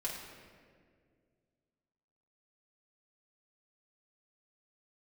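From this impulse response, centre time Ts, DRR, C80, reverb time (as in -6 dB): 71 ms, -5.0 dB, 4.0 dB, 2.0 s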